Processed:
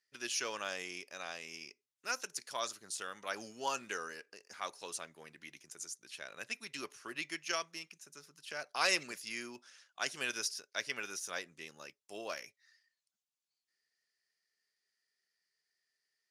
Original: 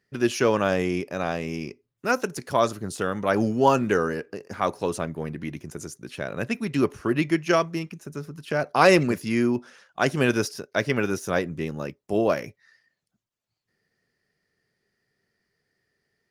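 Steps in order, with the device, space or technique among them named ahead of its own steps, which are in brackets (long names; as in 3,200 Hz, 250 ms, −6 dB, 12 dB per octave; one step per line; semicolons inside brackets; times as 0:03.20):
piezo pickup straight into a mixer (low-pass filter 7,200 Hz 12 dB per octave; first difference)
level +1 dB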